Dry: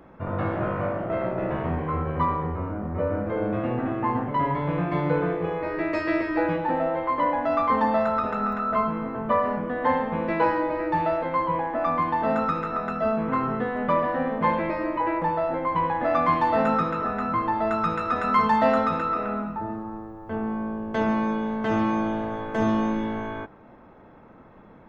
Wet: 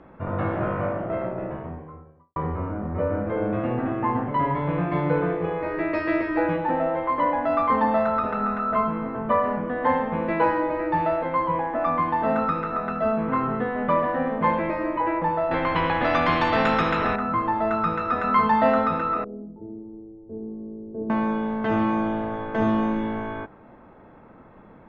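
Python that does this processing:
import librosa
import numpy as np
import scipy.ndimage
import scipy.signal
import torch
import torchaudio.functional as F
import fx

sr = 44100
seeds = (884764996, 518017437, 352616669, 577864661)

y = fx.studio_fade_out(x, sr, start_s=0.75, length_s=1.61)
y = fx.spectral_comp(y, sr, ratio=2.0, at=(15.51, 17.16))
y = fx.ladder_lowpass(y, sr, hz=450.0, resonance_pct=55, at=(19.24, 21.1))
y = scipy.signal.sosfilt(scipy.signal.butter(2, 3500.0, 'lowpass', fs=sr, output='sos'), y)
y = y * 10.0 ** (1.0 / 20.0)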